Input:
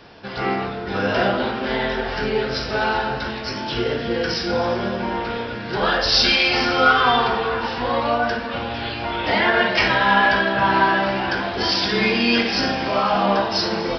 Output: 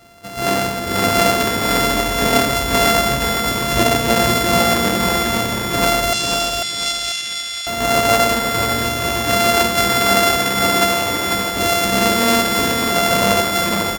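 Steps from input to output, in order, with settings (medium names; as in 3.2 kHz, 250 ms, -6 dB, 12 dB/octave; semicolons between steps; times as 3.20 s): sorted samples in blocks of 64 samples; level rider; 6.13–7.67 s: Butterworth band-pass 4.9 kHz, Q 0.89; on a send: feedback delay 494 ms, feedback 32%, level -5.5 dB; on the sum: trim -1.5 dB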